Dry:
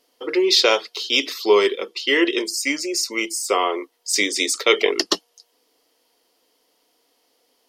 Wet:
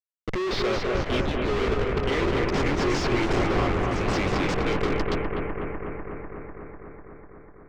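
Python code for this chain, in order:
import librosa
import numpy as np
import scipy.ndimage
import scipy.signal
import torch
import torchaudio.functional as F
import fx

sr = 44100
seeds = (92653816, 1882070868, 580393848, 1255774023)

y = fx.leveller(x, sr, passes=2, at=(2.79, 3.33))
y = fx.schmitt(y, sr, flips_db=-21.0)
y = fx.echo_pitch(y, sr, ms=275, semitones=2, count=3, db_per_echo=-6.0)
y = fx.air_absorb(y, sr, metres=160.0)
y = fx.echo_bbd(y, sr, ms=248, stages=4096, feedback_pct=77, wet_db=-3)
y = y * 10.0 ** (-3.5 / 20.0)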